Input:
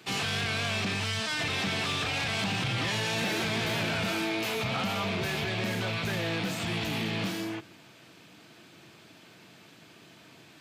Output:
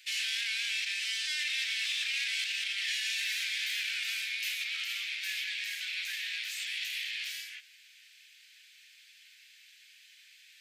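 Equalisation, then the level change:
Butterworth high-pass 1,800 Hz 48 dB per octave
0.0 dB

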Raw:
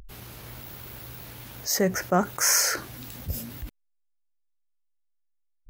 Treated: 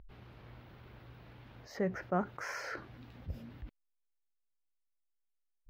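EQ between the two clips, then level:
high-frequency loss of the air 340 metres
−9.0 dB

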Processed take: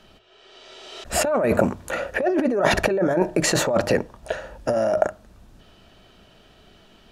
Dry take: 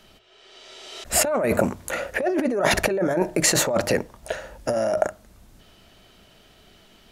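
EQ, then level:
low-pass filter 3,500 Hz 6 dB per octave
notch filter 2,100 Hz, Q 11
+2.0 dB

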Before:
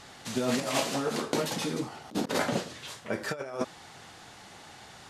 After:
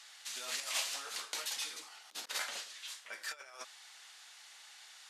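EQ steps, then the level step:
Bessel high-pass filter 2,300 Hz, order 2
−1.5 dB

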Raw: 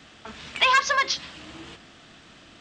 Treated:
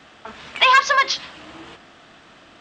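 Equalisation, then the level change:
parametric band 870 Hz +9 dB 3 octaves
dynamic equaliser 3,900 Hz, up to +5 dB, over −31 dBFS, Q 0.76
−3.0 dB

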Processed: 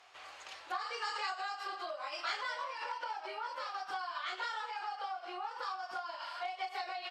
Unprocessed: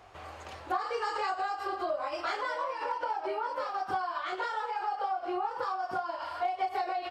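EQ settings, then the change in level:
resonant band-pass 4,200 Hz, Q 0.65
+2.5 dB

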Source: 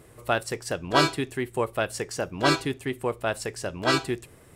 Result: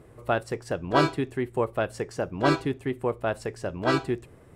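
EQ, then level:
high-shelf EQ 2,100 Hz −12 dB
high-shelf EQ 11,000 Hz −3.5 dB
+1.5 dB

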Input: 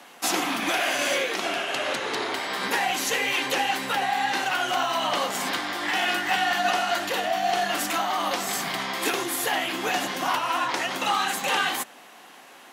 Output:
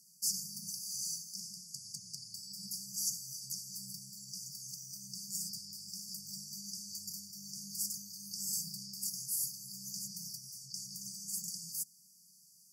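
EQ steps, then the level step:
high-pass filter 150 Hz 6 dB per octave
linear-phase brick-wall band-stop 200–4,500 Hz
−4.5 dB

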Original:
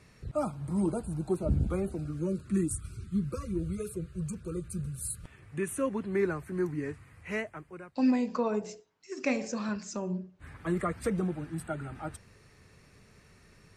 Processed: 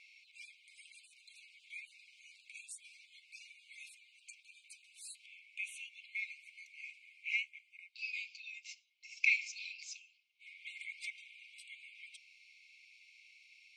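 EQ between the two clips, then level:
linear-phase brick-wall high-pass 2,100 Hz
head-to-tape spacing loss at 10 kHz 27 dB
high-shelf EQ 3,700 Hz −6.5 dB
+17.0 dB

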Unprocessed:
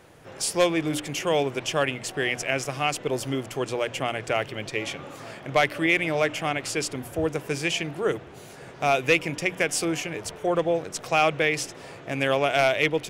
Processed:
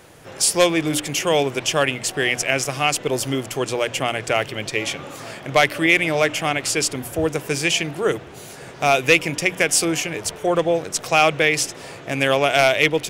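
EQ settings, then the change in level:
high-shelf EQ 3,700 Hz +6.5 dB
+4.5 dB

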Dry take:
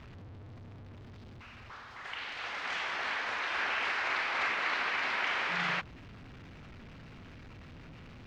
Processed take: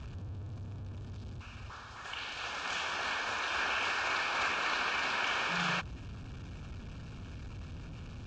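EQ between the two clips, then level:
Butterworth band-reject 2,000 Hz, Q 5.1
low-pass with resonance 7,300 Hz, resonance Q 2.8
parametric band 61 Hz +9.5 dB 2.4 octaves
0.0 dB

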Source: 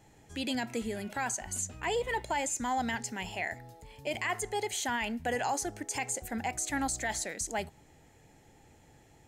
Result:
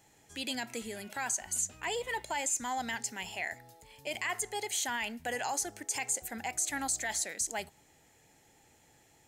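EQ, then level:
spectral tilt +2 dB per octave
−3.0 dB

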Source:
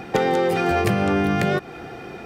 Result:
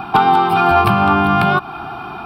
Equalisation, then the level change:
parametric band 1,000 Hz +13 dB 1.7 octaves
phaser with its sweep stopped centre 1,900 Hz, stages 6
+5.0 dB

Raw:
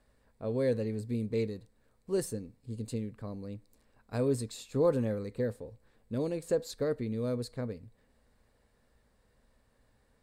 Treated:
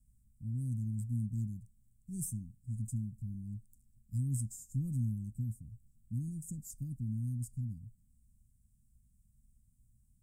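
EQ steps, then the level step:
inverse Chebyshev band-stop filter 430–3,400 Hz, stop band 50 dB
Butterworth band-reject 4,200 Hz, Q 3.8
+3.0 dB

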